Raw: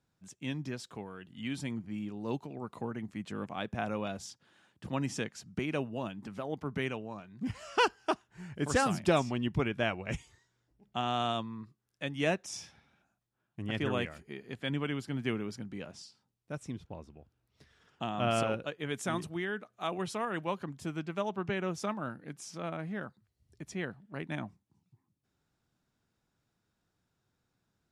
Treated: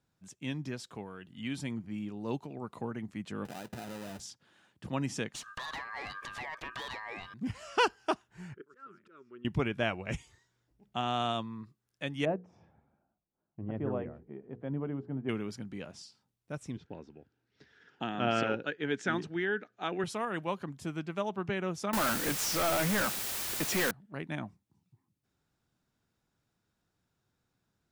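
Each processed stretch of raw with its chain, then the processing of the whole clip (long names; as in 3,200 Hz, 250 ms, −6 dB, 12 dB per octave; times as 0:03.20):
0:03.45–0:04.20: each half-wave held at its own peak + downward compressor, threshold −38 dBFS + notch comb filter 1,100 Hz
0:05.34–0:07.34: mid-hump overdrive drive 23 dB, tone 5,800 Hz, clips at −19.5 dBFS + downward compressor 4 to 1, threshold −36 dBFS + ring modulation 1,400 Hz
0:08.54–0:09.45: upward compression, threshold −40 dBFS + volume swells 535 ms + pair of resonant band-passes 730 Hz, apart 1.8 octaves
0:12.25–0:15.29: Chebyshev low-pass filter 710 Hz + mains-hum notches 60/120/180/240/300/360/420/480 Hz
0:16.77–0:20.04: loudspeaker in its box 130–6,100 Hz, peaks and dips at 280 Hz +5 dB, 410 Hz +5 dB, 640 Hz −5 dB, 1,100 Hz −10 dB, 1,600 Hz +6 dB + auto-filter bell 3.3 Hz 810–1,900 Hz +6 dB
0:21.93–0:23.91: mid-hump overdrive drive 32 dB, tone 4,100 Hz, clips at −22.5 dBFS + bit-depth reduction 6 bits, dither triangular
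whole clip: no processing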